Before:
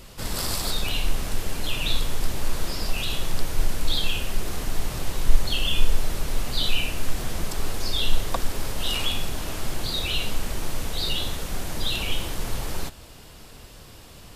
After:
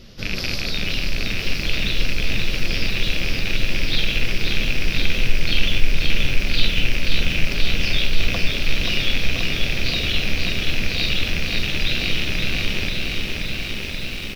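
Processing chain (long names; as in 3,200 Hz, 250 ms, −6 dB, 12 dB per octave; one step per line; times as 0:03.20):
loose part that buzzes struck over −32 dBFS, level −12 dBFS
drawn EQ curve 100 Hz 0 dB, 190 Hz +4 dB, 600 Hz −2 dB, 950 Hz −12 dB, 1,500 Hz −3 dB, 5,700 Hz +2 dB, 8,100 Hz −23 dB, 12,000 Hz −13 dB
in parallel at +0.5 dB: compressor whose output falls as the input rises −19 dBFS
on the sum: flanger 0.37 Hz, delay 8.4 ms, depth 9.1 ms, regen +71%
on a send: repeating echo 1,016 ms, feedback 53%, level −9 dB
on the sum: feedback echo at a low word length 531 ms, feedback 80%, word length 7 bits, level −4.5 dB
level −1.5 dB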